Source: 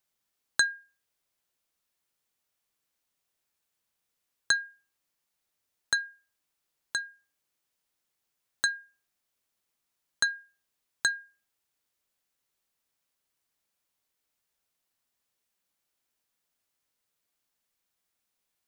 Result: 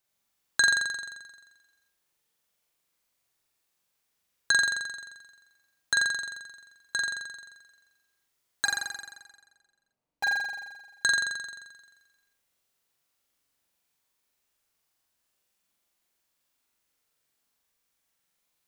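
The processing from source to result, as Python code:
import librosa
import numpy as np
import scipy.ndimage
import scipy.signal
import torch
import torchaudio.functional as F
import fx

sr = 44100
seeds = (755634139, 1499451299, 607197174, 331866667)

y = fx.median_filter(x, sr, points=25, at=(8.65, 10.24))
y = fx.room_flutter(y, sr, wall_m=7.5, rt60_s=1.3)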